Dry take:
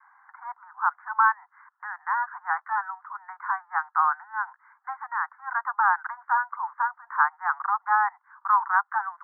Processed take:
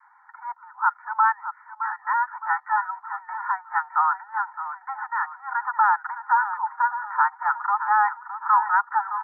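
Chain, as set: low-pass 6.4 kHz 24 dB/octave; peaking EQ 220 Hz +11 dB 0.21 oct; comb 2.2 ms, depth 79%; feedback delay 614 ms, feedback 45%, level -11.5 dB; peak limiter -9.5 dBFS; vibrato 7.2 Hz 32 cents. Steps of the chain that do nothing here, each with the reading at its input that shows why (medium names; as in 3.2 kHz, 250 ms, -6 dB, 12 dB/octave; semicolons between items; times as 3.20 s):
low-pass 6.4 kHz: input has nothing above 2 kHz; peaking EQ 220 Hz: input has nothing below 680 Hz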